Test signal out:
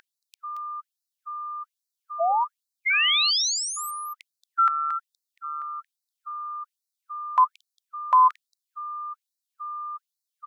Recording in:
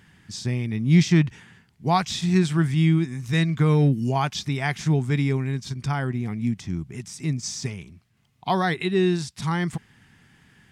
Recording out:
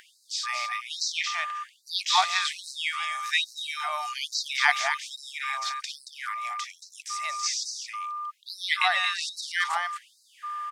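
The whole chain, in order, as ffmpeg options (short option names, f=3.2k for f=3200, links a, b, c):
-filter_complex "[0:a]aeval=exprs='val(0)+0.0178*sin(2*PI*1200*n/s)':c=same,acrossover=split=6100[a][b];[b]acompressor=threshold=-51dB:ratio=4:attack=1:release=60[c];[a][c]amix=inputs=2:normalize=0,aecho=1:1:227:0.447,afftfilt=real='re*gte(b*sr/1024,540*pow(3900/540,0.5+0.5*sin(2*PI*1.2*pts/sr)))':imag='im*gte(b*sr/1024,540*pow(3900/540,0.5+0.5*sin(2*PI*1.2*pts/sr)))':win_size=1024:overlap=0.75,volume=7dB"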